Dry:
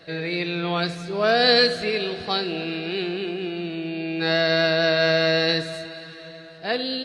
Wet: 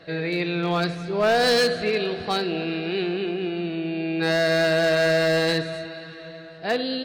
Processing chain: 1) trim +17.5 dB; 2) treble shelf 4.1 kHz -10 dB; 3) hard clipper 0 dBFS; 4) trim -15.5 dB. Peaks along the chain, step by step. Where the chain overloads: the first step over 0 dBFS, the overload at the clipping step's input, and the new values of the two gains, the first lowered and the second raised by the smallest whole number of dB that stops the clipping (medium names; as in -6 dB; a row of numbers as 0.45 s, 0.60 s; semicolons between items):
+12.0 dBFS, +10.0 dBFS, 0.0 dBFS, -15.5 dBFS; step 1, 10.0 dB; step 1 +7.5 dB, step 4 -5.5 dB